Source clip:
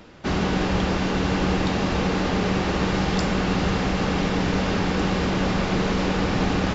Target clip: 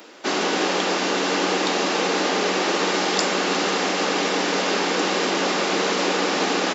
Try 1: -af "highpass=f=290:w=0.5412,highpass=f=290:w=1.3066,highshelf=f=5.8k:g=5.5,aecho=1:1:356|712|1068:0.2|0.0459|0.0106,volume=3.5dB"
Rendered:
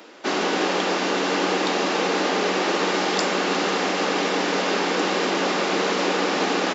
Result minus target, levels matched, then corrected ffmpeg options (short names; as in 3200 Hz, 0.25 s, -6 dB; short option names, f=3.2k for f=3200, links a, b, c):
8000 Hz band -3.5 dB
-af "highpass=f=290:w=0.5412,highpass=f=290:w=1.3066,highshelf=f=5.8k:g=13,aecho=1:1:356|712|1068:0.2|0.0459|0.0106,volume=3.5dB"